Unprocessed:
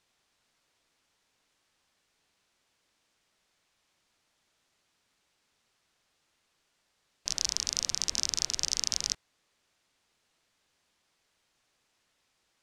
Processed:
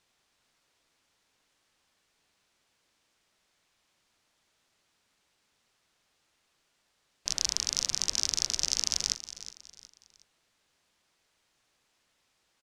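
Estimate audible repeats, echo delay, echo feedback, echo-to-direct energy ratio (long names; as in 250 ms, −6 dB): 3, 366 ms, 36%, −13.5 dB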